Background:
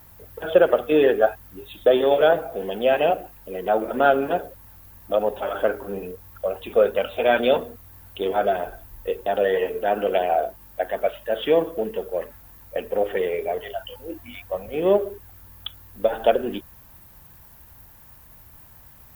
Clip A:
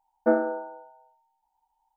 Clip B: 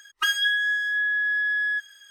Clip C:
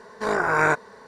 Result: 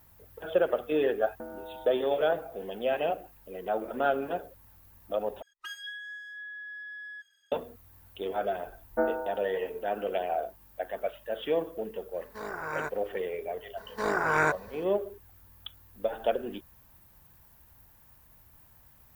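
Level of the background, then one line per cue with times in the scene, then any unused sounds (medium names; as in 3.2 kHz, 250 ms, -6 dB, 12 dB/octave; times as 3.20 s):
background -9.5 dB
1.14 s: add A -4 dB + compression, threshold -35 dBFS
5.42 s: replace with B -18 dB
8.71 s: add A -3 dB + high-pass 470 Hz 6 dB/octave
12.14 s: add C -14.5 dB
13.77 s: add C -5 dB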